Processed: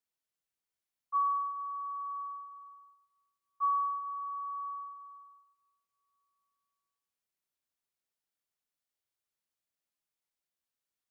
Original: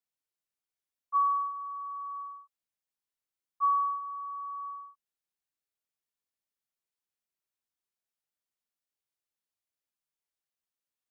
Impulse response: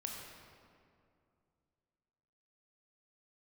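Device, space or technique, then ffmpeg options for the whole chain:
compressed reverb return: -filter_complex "[0:a]asplit=2[link_01][link_02];[1:a]atrim=start_sample=2205[link_03];[link_02][link_03]afir=irnorm=-1:irlink=0,acompressor=threshold=-40dB:ratio=6,volume=0.5dB[link_04];[link_01][link_04]amix=inputs=2:normalize=0,volume=-5dB"

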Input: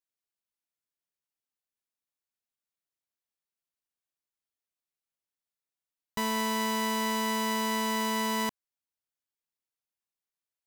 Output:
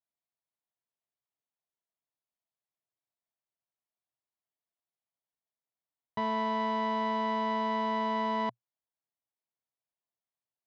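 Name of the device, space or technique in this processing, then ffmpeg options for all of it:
guitar cabinet: -af "highpass=100,equalizer=frequency=120:width_type=q:width=4:gain=9,equalizer=frequency=670:width_type=q:width=4:gain=8,equalizer=frequency=970:width_type=q:width=4:gain=4,equalizer=frequency=1500:width_type=q:width=4:gain=-5,equalizer=frequency=2600:width_type=q:width=4:gain=-9,lowpass=frequency=3400:width=0.5412,lowpass=frequency=3400:width=1.3066,volume=-3dB"

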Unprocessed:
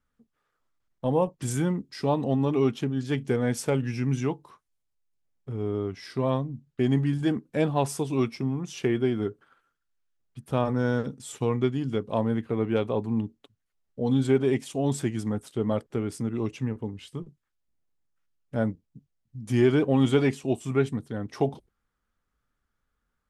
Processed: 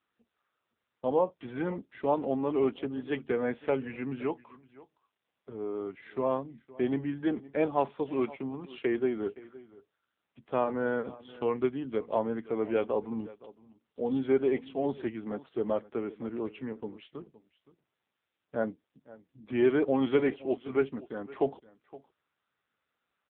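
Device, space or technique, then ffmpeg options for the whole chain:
satellite phone: -af "highpass=330,lowpass=3400,aecho=1:1:517:0.106" -ar 8000 -c:a libopencore_amrnb -b:a 6700

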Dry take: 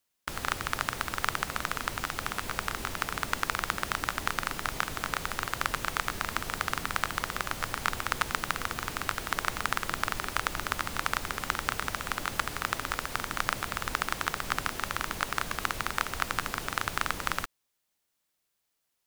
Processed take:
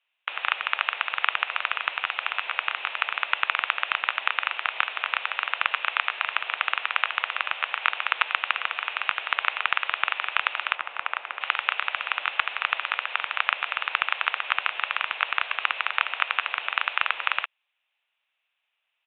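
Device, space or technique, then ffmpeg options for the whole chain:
musical greeting card: -filter_complex "[0:a]asettb=1/sr,asplit=3[link_01][link_02][link_03];[link_01]atrim=end=10.754[link_04];[link_02]atrim=start=10.75:end=11.41,asetpts=PTS-STARTPTS,afade=type=in:duration=0.004:curve=qsin,afade=type=out:start_time=0.656:duration=0.004:curve=qsin,lowpass=frequency=1200:poles=1[link_05];[link_03]atrim=start=11.406[link_06];[link_04][link_05]acrossfade=duration=0.004:curve1=hsin:curve2=qsin[link_07];[link_07][link_06]acrossfade=duration=0.004:curve1=qsin:curve2=hsin,aresample=8000,aresample=44100,highpass=frequency=650:width=0.5412,highpass=frequency=650:width=1.3066,equalizer=frequency=2600:width_type=o:width=0.5:gain=11.5,volume=3.5dB"

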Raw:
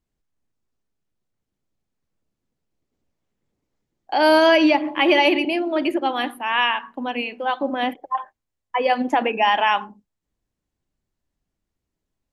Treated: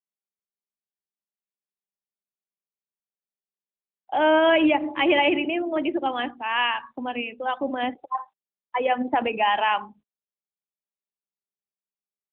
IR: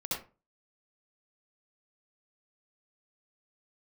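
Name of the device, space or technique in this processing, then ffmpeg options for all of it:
mobile call with aggressive noise cancelling: -af "highpass=frequency=150:width=0.5412,highpass=frequency=150:width=1.3066,afftdn=noise_reduction=27:noise_floor=-37,volume=-3dB" -ar 8000 -c:a libopencore_amrnb -b:a 12200

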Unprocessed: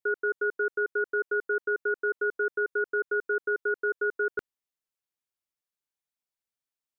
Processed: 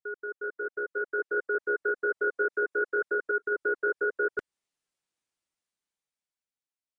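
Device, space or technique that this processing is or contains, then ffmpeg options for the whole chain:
low-bitrate web radio: -filter_complex "[0:a]asettb=1/sr,asplit=3[link_01][link_02][link_03];[link_01]atrim=end=2.174[link_04];[link_02]atrim=start=2.17:end=3.12,asetpts=PTS-STARTPTS,afade=type=in:duration=0.004:curve=qsin,afade=type=out:start_time=0.946:duration=0.004:curve=qsin,highpass=frequency=170:poles=1[link_05];[link_03]atrim=start=3.116[link_06];[link_04][link_05]acrossfade=duration=0.004:curve1=hsin:curve2=qsin[link_07];[link_07][link_06]acrossfade=duration=0.004:curve1=qsin:curve2=hsin,dynaudnorm=framelen=290:gausssize=11:maxgain=13dB,alimiter=limit=-13dB:level=0:latency=1:release=161,volume=-8.5dB" -ar 22050 -c:a aac -b:a 32k

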